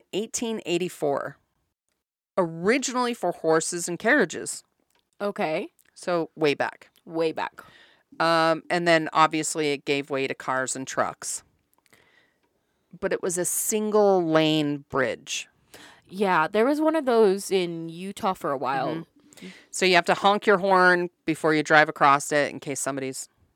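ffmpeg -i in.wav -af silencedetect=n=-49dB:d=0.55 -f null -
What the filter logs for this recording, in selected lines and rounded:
silence_start: 1.36
silence_end: 2.38 | silence_duration: 1.02
silence_start: 12.18
silence_end: 12.93 | silence_duration: 0.75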